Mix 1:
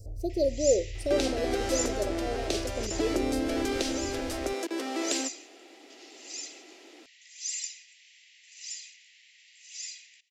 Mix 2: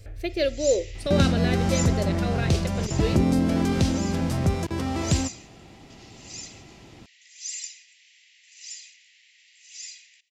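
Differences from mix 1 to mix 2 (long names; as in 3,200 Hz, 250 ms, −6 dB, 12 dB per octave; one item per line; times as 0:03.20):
speech: remove elliptic band-stop filter 760–5,100 Hz
second sound: remove Butterworth high-pass 290 Hz 48 dB per octave
master: add parametric band 1,000 Hz +7.5 dB 0.66 octaves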